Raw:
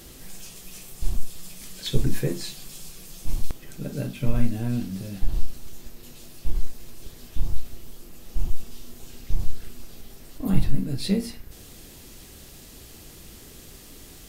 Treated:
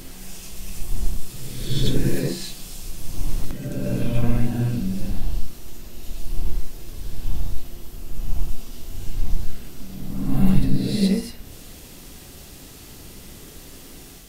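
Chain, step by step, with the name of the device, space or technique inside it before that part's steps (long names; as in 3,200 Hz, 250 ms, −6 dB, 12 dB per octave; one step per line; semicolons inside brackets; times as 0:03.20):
reverse reverb (reversed playback; convolution reverb RT60 1.3 s, pre-delay 56 ms, DRR −2 dB; reversed playback)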